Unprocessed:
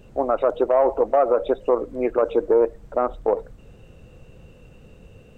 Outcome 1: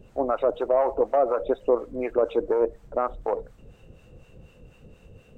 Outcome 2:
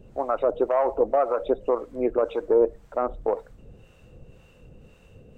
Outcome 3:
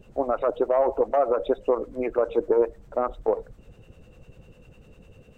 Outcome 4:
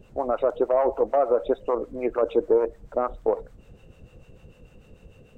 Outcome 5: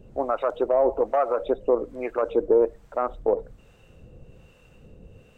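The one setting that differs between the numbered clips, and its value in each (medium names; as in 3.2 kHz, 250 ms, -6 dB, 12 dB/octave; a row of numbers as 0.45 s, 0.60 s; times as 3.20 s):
harmonic tremolo, rate: 4.1 Hz, 1.9 Hz, 10 Hz, 6.7 Hz, 1.2 Hz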